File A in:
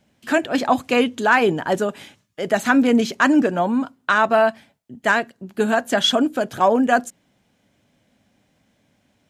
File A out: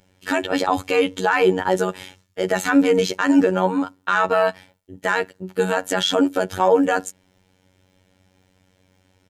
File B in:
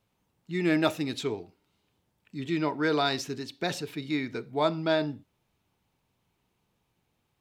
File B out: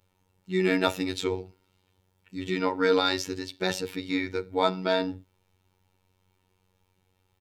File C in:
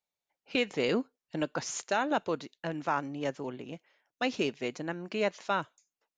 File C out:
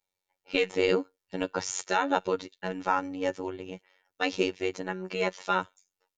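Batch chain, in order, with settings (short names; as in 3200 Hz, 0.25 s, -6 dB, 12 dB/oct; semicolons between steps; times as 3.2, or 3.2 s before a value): low shelf 100 Hz +6.5 dB; comb 2.2 ms, depth 42%; robotiser 93.1 Hz; maximiser +8 dB; gain -3.5 dB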